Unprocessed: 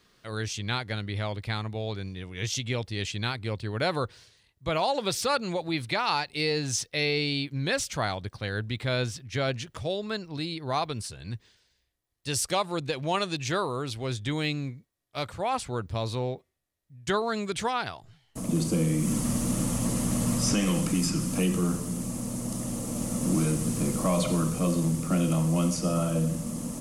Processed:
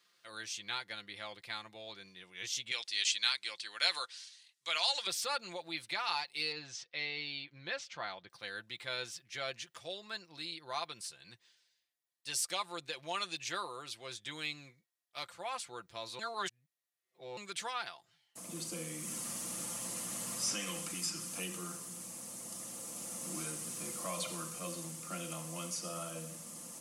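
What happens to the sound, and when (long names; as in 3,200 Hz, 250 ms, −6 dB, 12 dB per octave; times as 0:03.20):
0:02.71–0:05.07: meter weighting curve ITU-R 468
0:06.52–0:08.30: high-frequency loss of the air 170 metres
0:16.19–0:17.37: reverse
whole clip: high-pass filter 1,500 Hz 6 dB per octave; comb filter 5.8 ms, depth 49%; level −6 dB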